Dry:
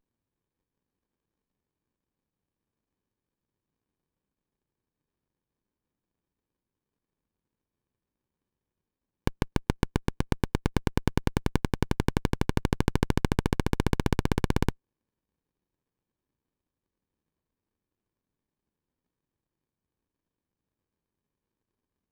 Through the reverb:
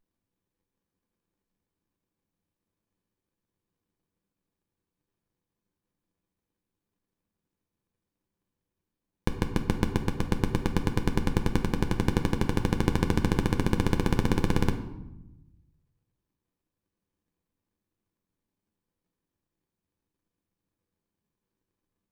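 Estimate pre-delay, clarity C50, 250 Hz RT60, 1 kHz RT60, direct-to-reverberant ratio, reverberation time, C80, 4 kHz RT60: 6 ms, 10.0 dB, 1.4 s, 0.90 s, 4.0 dB, 0.90 s, 12.5 dB, 0.60 s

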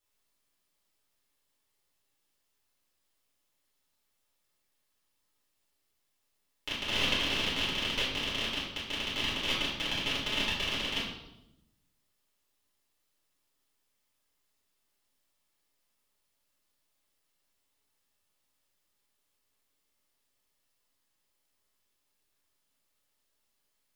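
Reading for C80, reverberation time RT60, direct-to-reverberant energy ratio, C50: 5.5 dB, 0.90 s, -9.5 dB, 2.0 dB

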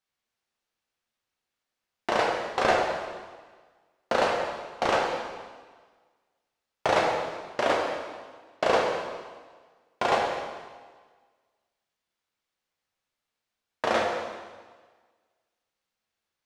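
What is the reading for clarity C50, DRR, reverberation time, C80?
1.5 dB, -1.5 dB, 1.5 s, 3.5 dB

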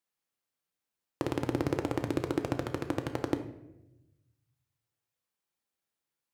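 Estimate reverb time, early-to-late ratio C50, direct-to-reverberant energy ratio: 0.95 s, 10.5 dB, 6.0 dB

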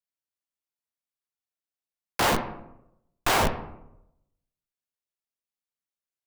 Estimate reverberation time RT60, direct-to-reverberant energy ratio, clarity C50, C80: 0.85 s, 6.5 dB, 10.0 dB, 12.5 dB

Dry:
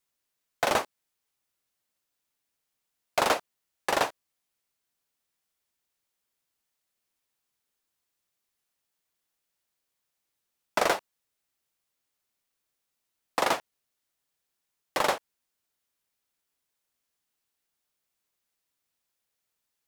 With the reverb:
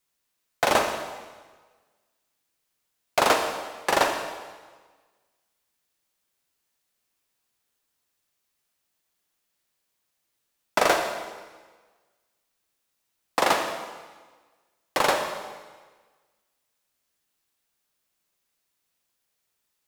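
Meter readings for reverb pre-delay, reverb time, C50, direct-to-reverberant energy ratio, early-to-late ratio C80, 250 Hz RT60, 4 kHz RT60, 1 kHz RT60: 34 ms, 1.4 s, 5.5 dB, 4.5 dB, 7.0 dB, 1.4 s, 1.3 s, 1.4 s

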